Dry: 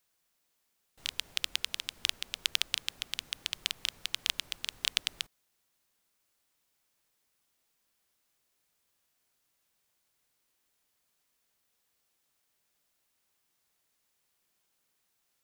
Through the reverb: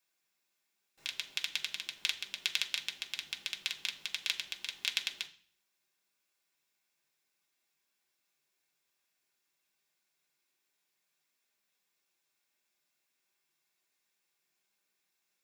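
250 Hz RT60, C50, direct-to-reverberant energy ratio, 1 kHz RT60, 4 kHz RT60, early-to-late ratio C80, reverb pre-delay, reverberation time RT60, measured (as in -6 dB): 0.55 s, 15.0 dB, 0.5 dB, 0.45 s, 0.50 s, 19.0 dB, 3 ms, 0.45 s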